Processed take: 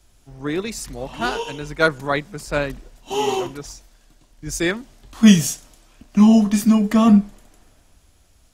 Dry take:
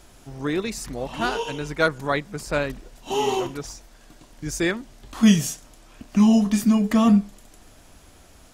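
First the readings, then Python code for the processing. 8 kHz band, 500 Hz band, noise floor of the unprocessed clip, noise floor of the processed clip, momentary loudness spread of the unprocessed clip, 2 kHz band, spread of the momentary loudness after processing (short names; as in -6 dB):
+4.0 dB, +2.0 dB, -51 dBFS, -56 dBFS, 17 LU, +2.5 dB, 18 LU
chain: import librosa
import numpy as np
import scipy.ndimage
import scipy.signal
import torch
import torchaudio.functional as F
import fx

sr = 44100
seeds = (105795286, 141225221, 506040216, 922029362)

y = fx.band_widen(x, sr, depth_pct=40)
y = y * librosa.db_to_amplitude(2.0)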